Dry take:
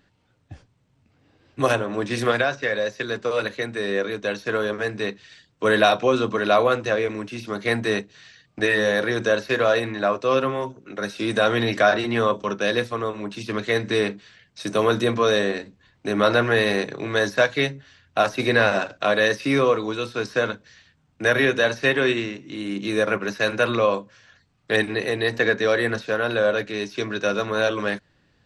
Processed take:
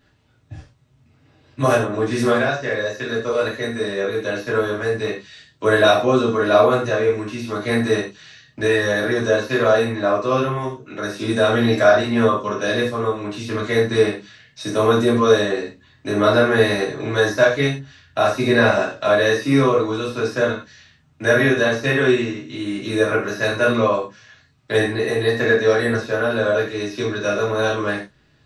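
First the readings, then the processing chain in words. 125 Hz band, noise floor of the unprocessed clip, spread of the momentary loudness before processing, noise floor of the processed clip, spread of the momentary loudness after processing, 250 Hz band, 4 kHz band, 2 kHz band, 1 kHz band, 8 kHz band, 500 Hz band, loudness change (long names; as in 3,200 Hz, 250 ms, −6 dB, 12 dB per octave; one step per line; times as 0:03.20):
+6.5 dB, −64 dBFS, 9 LU, −57 dBFS, 11 LU, +5.0 dB, +1.0 dB, +1.5 dB, +2.5 dB, +3.5 dB, +4.0 dB, +3.5 dB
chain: reverb whose tail is shaped and stops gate 140 ms falling, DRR −6.5 dB
dynamic equaliser 2,900 Hz, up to −7 dB, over −33 dBFS, Q 0.84
level −2.5 dB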